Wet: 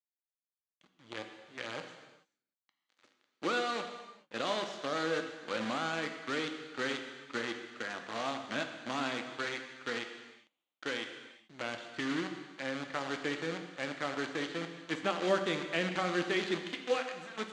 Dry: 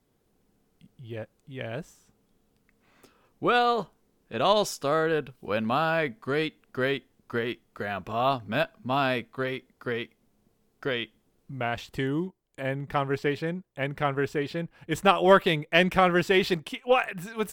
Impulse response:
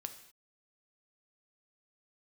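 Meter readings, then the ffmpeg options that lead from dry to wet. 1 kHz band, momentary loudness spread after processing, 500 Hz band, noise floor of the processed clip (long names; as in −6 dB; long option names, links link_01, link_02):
−11.0 dB, 12 LU, −10.0 dB, below −85 dBFS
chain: -filter_complex "[0:a]acrossover=split=460[link_01][link_02];[link_02]acompressor=threshold=-37dB:ratio=2[link_03];[link_01][link_03]amix=inputs=2:normalize=0,acrusher=bits=6:dc=4:mix=0:aa=0.000001,highpass=340,equalizer=frequency=420:width_type=q:width=4:gain=-9,equalizer=frequency=680:width_type=q:width=4:gain=-7,equalizer=frequency=970:width_type=q:width=4:gain=-5,equalizer=frequency=2600:width_type=q:width=4:gain=-3,equalizer=frequency=5300:width_type=q:width=4:gain=-8,lowpass=frequency=5900:width=0.5412,lowpass=frequency=5900:width=1.3066[link_04];[1:a]atrim=start_sample=2205,asetrate=25578,aresample=44100[link_05];[link_04][link_05]afir=irnorm=-1:irlink=0"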